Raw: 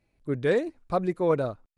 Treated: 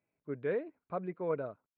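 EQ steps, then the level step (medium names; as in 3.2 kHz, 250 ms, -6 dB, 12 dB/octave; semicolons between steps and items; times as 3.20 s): dynamic bell 960 Hz, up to -3 dB, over -37 dBFS, Q 1.7; cabinet simulation 230–2100 Hz, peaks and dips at 240 Hz -6 dB, 340 Hz -8 dB, 530 Hz -5 dB, 780 Hz -7 dB, 1.2 kHz -4 dB, 1.8 kHz -7 dB; -4.0 dB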